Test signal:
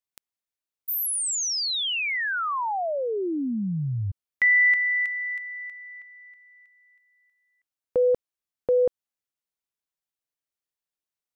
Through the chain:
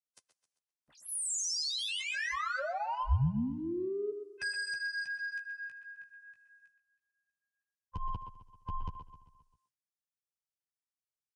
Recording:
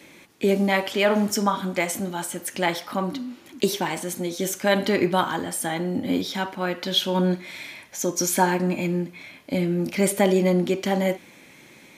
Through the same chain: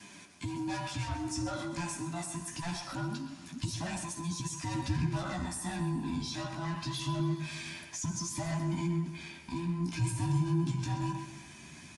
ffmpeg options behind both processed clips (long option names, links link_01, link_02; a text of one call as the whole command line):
ffmpeg -i in.wav -filter_complex "[0:a]afftfilt=real='real(if(between(b,1,1008),(2*floor((b-1)/24)+1)*24-b,b),0)':imag='imag(if(between(b,1,1008),(2*floor((b-1)/24)+1)*24-b,b),0)*if(between(b,1,1008),-1,1)':win_size=2048:overlap=0.75,acrossover=split=440[link_01][link_02];[link_01]highpass=88[link_03];[link_02]asoftclip=type=tanh:threshold=-25dB[link_04];[link_03][link_04]amix=inputs=2:normalize=0,aexciter=amount=2.8:drive=2.5:freq=4900,acompressor=threshold=-31dB:ratio=3:attack=0.15:release=114:knee=1:detection=peak,asubboost=boost=4.5:cutoff=160,bandreject=frequency=2200:width=17,asplit=2[link_05][link_06];[link_06]aecho=0:1:132|264|396|528|660:0.211|0.112|0.0594|0.0315|0.0167[link_07];[link_05][link_07]amix=inputs=2:normalize=0,agate=range=-11dB:threshold=-55dB:ratio=16:release=495:detection=rms,flanger=delay=9.4:depth=9.8:regen=-12:speed=0.24:shape=triangular,aresample=22050,aresample=44100,asplit=2[link_08][link_09];[link_09]adelay=120,highpass=300,lowpass=3400,asoftclip=type=hard:threshold=-29dB,volume=-9dB[link_10];[link_08][link_10]amix=inputs=2:normalize=0" out.wav